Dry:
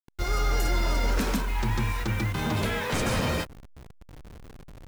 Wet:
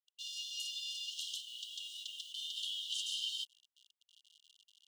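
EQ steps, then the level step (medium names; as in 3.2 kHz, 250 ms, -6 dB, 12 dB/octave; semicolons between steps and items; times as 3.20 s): brick-wall FIR high-pass 2.8 kHz; distance through air 130 m; peaking EQ 4.8 kHz -13 dB 1.5 oct; +12.5 dB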